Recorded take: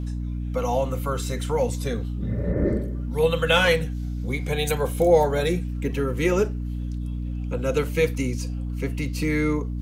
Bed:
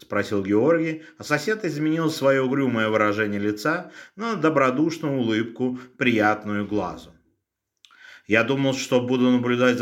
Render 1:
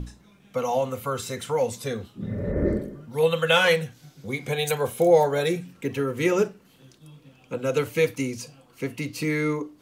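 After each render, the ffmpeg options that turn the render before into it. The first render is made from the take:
-af "bandreject=f=60:t=h:w=6,bandreject=f=120:t=h:w=6,bandreject=f=180:t=h:w=6,bandreject=f=240:t=h:w=6,bandreject=f=300:t=h:w=6"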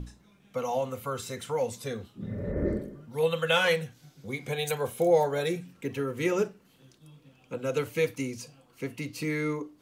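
-af "volume=0.562"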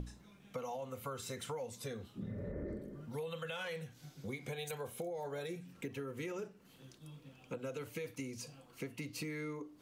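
-af "alimiter=limit=0.0841:level=0:latency=1:release=12,acompressor=threshold=0.01:ratio=6"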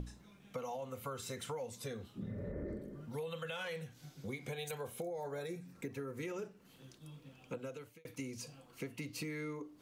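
-filter_complex "[0:a]asettb=1/sr,asplit=3[s0][s1][s2];[s0]atrim=end=5.024[s3];[s1]atrim=start=5.02:end=6.23,asetpts=PTS-STARTPTS,afade=t=in:d=0.004:c=qsin,afade=t=out:st=1.206:d=0.004:c=qsin,equalizer=f=3000:w=4.2:g=-11.5[s4];[s2]atrim=start=6.226[s5];[s3][s4]acrossfade=d=0.004:c1=hsin:c2=qsin[s6];[s6][s5]acrossfade=d=0.004:c1=qsin:c2=hsin,asplit=2[s7][s8];[s7]atrim=end=8.05,asetpts=PTS-STARTPTS,afade=t=out:st=7.55:d=0.5[s9];[s8]atrim=start=8.05,asetpts=PTS-STARTPTS,afade=t=in:d=0.004:c=hsin[s10];[s9][s10]concat=n=2:v=0:a=1"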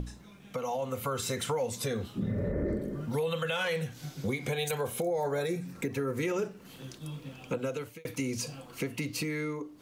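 -filter_complex "[0:a]dynaudnorm=f=130:g=13:m=1.78,asplit=2[s0][s1];[s1]alimiter=level_in=2.37:limit=0.0631:level=0:latency=1:release=117,volume=0.422,volume=1.33[s2];[s0][s2]amix=inputs=2:normalize=0"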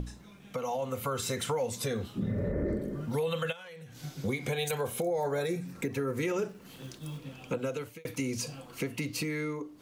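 -filter_complex "[0:a]asplit=3[s0][s1][s2];[s0]afade=t=out:st=3.51:d=0.02[s3];[s1]acompressor=threshold=0.00631:ratio=10:attack=3.2:release=140:knee=1:detection=peak,afade=t=in:st=3.51:d=0.02,afade=t=out:st=4.02:d=0.02[s4];[s2]afade=t=in:st=4.02:d=0.02[s5];[s3][s4][s5]amix=inputs=3:normalize=0,asettb=1/sr,asplit=3[s6][s7][s8];[s6]atrim=end=6.484[s9];[s7]atrim=start=6.48:end=7.18,asetpts=PTS-STARTPTS,afade=t=in:d=0.004:c=qsin,afade=t=out:st=0.696:d=0.004:c=qsin,acrusher=bits=5:mode=log:mix=0:aa=0.000001[s10];[s8]atrim=start=7.176[s11];[s9][s10]acrossfade=d=0.004:c1=hsin:c2=qsin[s12];[s12][s11]acrossfade=d=0.004:c1=qsin:c2=hsin"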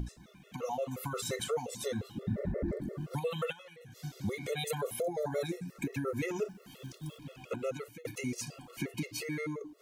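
-af "afftfilt=real='re*gt(sin(2*PI*5.7*pts/sr)*(1-2*mod(floor(b*sr/1024/360),2)),0)':imag='im*gt(sin(2*PI*5.7*pts/sr)*(1-2*mod(floor(b*sr/1024/360),2)),0)':win_size=1024:overlap=0.75"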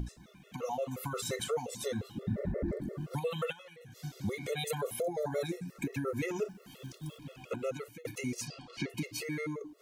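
-filter_complex "[0:a]asettb=1/sr,asplit=3[s0][s1][s2];[s0]atrim=end=8.474[s3];[s1]atrim=start=8.47:end=8.9,asetpts=PTS-STARTPTS,afade=t=in:d=0.004:c=qsin,afade=t=out:st=0.426:d=0.004:c=qsin,lowpass=f=4700:t=q:w=2.6[s4];[s2]atrim=start=8.896[s5];[s3][s4]acrossfade=d=0.004:c1=hsin:c2=qsin[s6];[s6][s5]acrossfade=d=0.004:c1=qsin:c2=hsin"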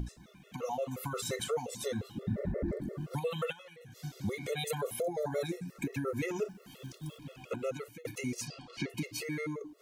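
-af anull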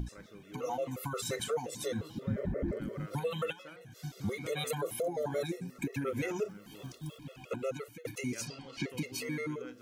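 -filter_complex "[1:a]volume=0.0316[s0];[0:a][s0]amix=inputs=2:normalize=0"

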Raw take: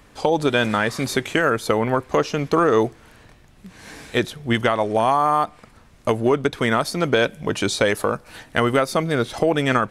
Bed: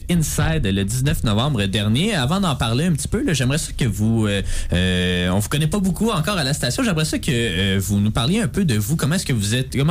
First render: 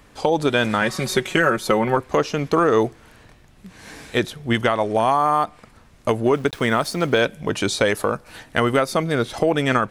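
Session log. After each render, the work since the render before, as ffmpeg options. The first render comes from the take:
-filter_complex "[0:a]asettb=1/sr,asplit=3[s0][s1][s2];[s0]atrim=end=0.814[s3];[s1]atrim=start=0.81:end=1.97,asetpts=PTS-STARTPTS,afade=t=in:d=0.004:c=qsin,afade=t=out:st=1.156:d=0.004:c=qsin,aecho=1:1:5.4:0.65,atrim=end_sample=51156[s4];[s2]atrim=start=1.966[s5];[s3][s4]acrossfade=d=0.004:c1=hsin:c2=qsin[s6];[s6][s5]acrossfade=d=0.004:c1=qsin:c2=hsin,asettb=1/sr,asplit=3[s7][s8][s9];[s7]atrim=end=6.344[s10];[s8]atrim=start=6.34:end=7.22,asetpts=PTS-STARTPTS,afade=t=in:d=0.004:c=qsin,afade=t=out:st=0.876:d=0.004:c=qsin,aeval=exprs='val(0)*gte(abs(val(0)),0.0112)':c=same[s11];[s9]atrim=start=7.216[s12];[s10][s11]acrossfade=d=0.004:c1=hsin:c2=qsin[s13];[s13][s12]acrossfade=d=0.004:c1=qsin:c2=hsin"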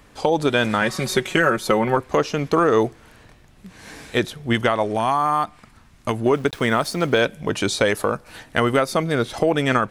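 -filter_complex "[0:a]asettb=1/sr,asplit=3[s0][s1][s2];[s0]atrim=end=4.944[s3];[s1]atrim=start=4.94:end=6.26,asetpts=PTS-STARTPTS,afade=t=in:d=0.004:c=qsin,afade=t=out:st=1.316:d=0.004:c=qsin,equalizer=f=510:t=o:w=0.77:g=-8[s4];[s2]atrim=start=6.256[s5];[s3][s4]acrossfade=d=0.004:c1=hsin:c2=qsin[s6];[s6][s5]acrossfade=d=0.004:c1=qsin:c2=hsin"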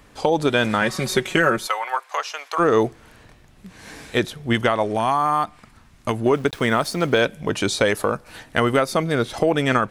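-filter_complex "[0:a]asplit=3[s0][s1][s2];[s0]afade=t=out:st=1.66:d=0.02[s3];[s1]highpass=f=760:w=0.5412,highpass=f=760:w=1.3066,afade=t=in:st=1.66:d=0.02,afade=t=out:st=2.58:d=0.02[s4];[s2]afade=t=in:st=2.58:d=0.02[s5];[s3][s4][s5]amix=inputs=3:normalize=0"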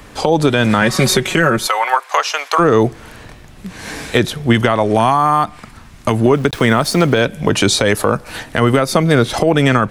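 -filter_complex "[0:a]acrossover=split=210[s0][s1];[s1]acompressor=threshold=0.0891:ratio=6[s2];[s0][s2]amix=inputs=2:normalize=0,alimiter=level_in=3.98:limit=0.891:release=50:level=0:latency=1"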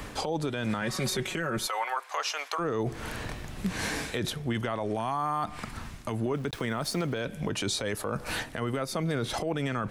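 -af "areverse,acompressor=threshold=0.1:ratio=6,areverse,alimiter=limit=0.0944:level=0:latency=1:release=202"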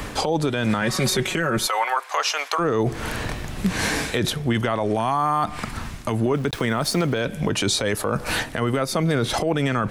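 -af "volume=2.66"

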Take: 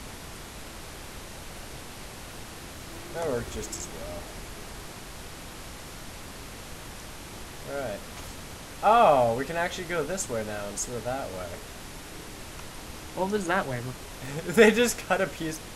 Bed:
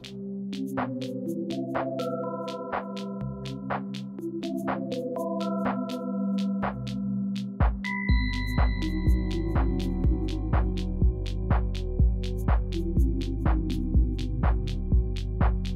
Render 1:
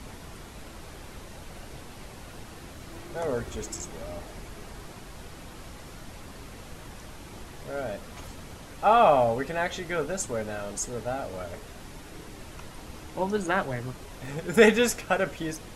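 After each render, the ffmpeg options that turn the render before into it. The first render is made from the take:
-af "afftdn=nr=6:nf=-43"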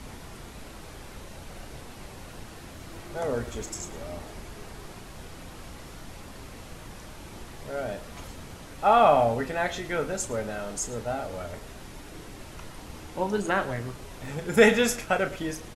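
-filter_complex "[0:a]asplit=2[s0][s1];[s1]adelay=34,volume=0.299[s2];[s0][s2]amix=inputs=2:normalize=0,asplit=2[s3][s4];[s4]adelay=110.8,volume=0.141,highshelf=f=4000:g=-2.49[s5];[s3][s5]amix=inputs=2:normalize=0"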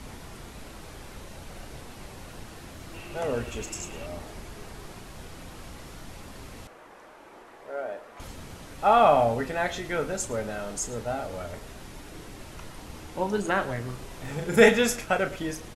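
-filter_complex "[0:a]asettb=1/sr,asplit=3[s0][s1][s2];[s0]atrim=end=2.944[s3];[s1]atrim=start=2.94:end=4.06,asetpts=PTS-STARTPTS,afade=t=in:d=0.004:c=qsin,afade=t=out:st=1.116:d=0.004:c=qsin,equalizer=f=2700:w=6.9:g=14.5[s4];[s2]atrim=start=4.056[s5];[s3][s4]acrossfade=d=0.004:c1=hsin:c2=qsin[s6];[s6][s5]acrossfade=d=0.004:c1=qsin:c2=hsin,asettb=1/sr,asplit=3[s7][s8][s9];[s7]atrim=end=6.674[s10];[s8]atrim=start=6.67:end=8.2,asetpts=PTS-STARTPTS,afade=t=in:d=0.004:c=qsin,afade=t=out:st=1.526:d=0.004:c=qsin,acrossover=split=320 2100:gain=0.0631 1 0.2[s11][s12][s13];[s11][s12][s13]amix=inputs=3:normalize=0[s14];[s9]atrim=start=8.196[s15];[s10][s14]acrossfade=d=0.004:c1=hsin:c2=qsin[s16];[s16][s15]acrossfade=d=0.004:c1=qsin:c2=hsin,asettb=1/sr,asplit=3[s17][s18][s19];[s17]atrim=end=13.854[s20];[s18]atrim=start=13.85:end=14.69,asetpts=PTS-STARTPTS,afade=t=in:d=0.004:c=qsin,afade=t=out:st=0.836:d=0.004:c=qsin,asplit=2[s21][s22];[s22]adelay=40,volume=0.501[s23];[s21][s23]amix=inputs=2:normalize=0,atrim=end_sample=37044[s24];[s19]atrim=start=14.686[s25];[s20][s24]acrossfade=d=0.004:c1=hsin:c2=qsin[s26];[s26][s25]acrossfade=d=0.004:c1=qsin:c2=hsin"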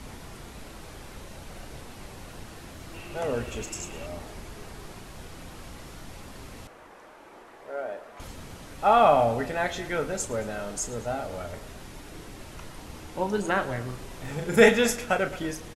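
-filter_complex "[0:a]asplit=2[s0][s1];[s1]adelay=221.6,volume=0.112,highshelf=f=4000:g=-4.99[s2];[s0][s2]amix=inputs=2:normalize=0"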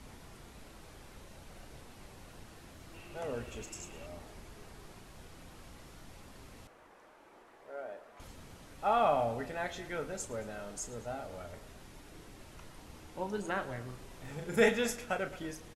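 -af "volume=0.335"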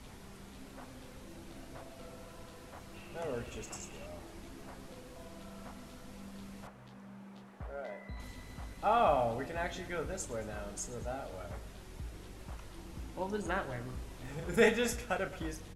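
-filter_complex "[1:a]volume=0.075[s0];[0:a][s0]amix=inputs=2:normalize=0"

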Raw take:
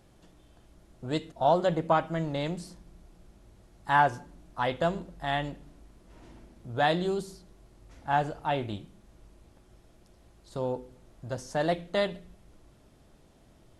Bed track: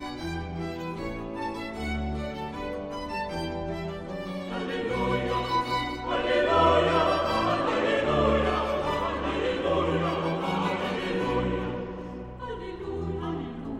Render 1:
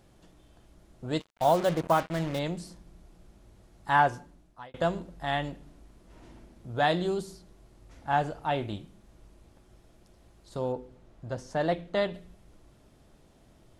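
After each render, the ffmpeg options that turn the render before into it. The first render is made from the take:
-filter_complex "[0:a]asplit=3[s0][s1][s2];[s0]afade=t=out:st=1.19:d=0.02[s3];[s1]acrusher=bits=5:mix=0:aa=0.5,afade=t=in:st=1.19:d=0.02,afade=t=out:st=2.38:d=0.02[s4];[s2]afade=t=in:st=2.38:d=0.02[s5];[s3][s4][s5]amix=inputs=3:normalize=0,asettb=1/sr,asplit=3[s6][s7][s8];[s6]atrim=end=10.724[s9];[s7]atrim=start=10.72:end=12.14,asetpts=PTS-STARTPTS,afade=t=in:d=0.004:c=qsin,afade=t=out:st=1.416:d=0.004:c=qsin,lowpass=f=3700:p=1[s10];[s8]atrim=start=12.136[s11];[s9][s10]acrossfade=d=0.004:c1=hsin:c2=qsin[s12];[s12][s11]acrossfade=d=0.004:c1=qsin:c2=hsin,asplit=2[s13][s14];[s13]atrim=end=4.74,asetpts=PTS-STARTPTS,afade=t=out:st=4.07:d=0.67[s15];[s14]atrim=start=4.74,asetpts=PTS-STARTPTS,afade=t=in:d=0.004:c=hsin[s16];[s15][s16]concat=n=2:v=0:a=1"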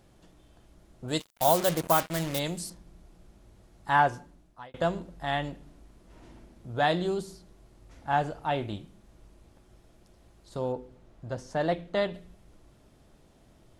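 -filter_complex "[0:a]asettb=1/sr,asplit=3[s0][s1][s2];[s0]atrim=end=1.084[s3];[s1]atrim=start=1.08:end=2.7,asetpts=PTS-STARTPTS,afade=t=in:d=0.004:c=qsin,afade=t=out:st=1.616:d=0.004:c=qsin,aemphasis=mode=production:type=75fm[s4];[s2]atrim=start=2.696[s5];[s3][s4]acrossfade=d=0.004:c1=hsin:c2=qsin[s6];[s6][s5]acrossfade=d=0.004:c1=qsin:c2=hsin"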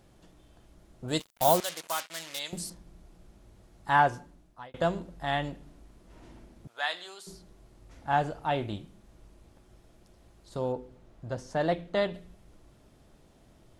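-filter_complex "[0:a]asettb=1/sr,asplit=3[s0][s1][s2];[s0]atrim=end=1.604[s3];[s1]atrim=start=1.6:end=2.53,asetpts=PTS-STARTPTS,afade=t=in:d=0.004:c=qsin,afade=t=out:st=0.926:d=0.004:c=qsin,bandpass=f=4600:t=q:w=0.54[s4];[s2]atrim=start=2.526[s5];[s3][s4]acrossfade=d=0.004:c1=hsin:c2=qsin[s6];[s6][s5]acrossfade=d=0.004:c1=qsin:c2=hsin,asettb=1/sr,asplit=3[s7][s8][s9];[s7]atrim=end=6.674[s10];[s8]atrim=start=6.67:end=7.27,asetpts=PTS-STARTPTS,afade=t=in:d=0.004:c=qsin,afade=t=out:st=0.596:d=0.004:c=qsin,highpass=1300[s11];[s9]atrim=start=7.266[s12];[s10][s11]acrossfade=d=0.004:c1=hsin:c2=qsin[s13];[s13][s12]acrossfade=d=0.004:c1=qsin:c2=hsin"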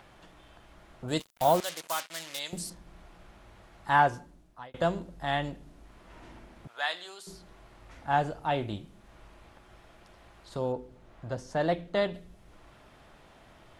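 -filter_complex "[0:a]acrossover=split=730|3300[s0][s1][s2];[s1]acompressor=mode=upward:threshold=0.00447:ratio=2.5[s3];[s2]alimiter=level_in=1.58:limit=0.0631:level=0:latency=1,volume=0.631[s4];[s0][s3][s4]amix=inputs=3:normalize=0"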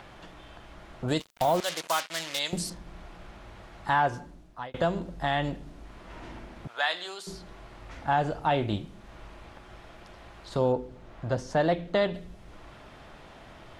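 -filter_complex "[0:a]acrossover=split=6900[s0][s1];[s0]acontrast=76[s2];[s2][s1]amix=inputs=2:normalize=0,alimiter=limit=0.168:level=0:latency=1:release=201"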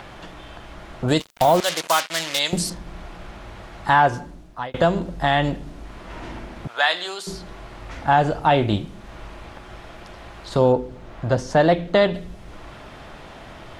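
-af "volume=2.66"

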